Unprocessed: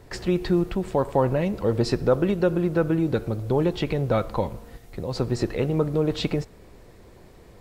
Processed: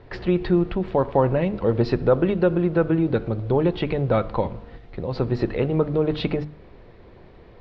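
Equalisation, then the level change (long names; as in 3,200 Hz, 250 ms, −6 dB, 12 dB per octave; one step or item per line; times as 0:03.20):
low-pass filter 4,200 Hz 24 dB per octave
high-frequency loss of the air 92 metres
mains-hum notches 50/100/150/200/250/300 Hz
+2.5 dB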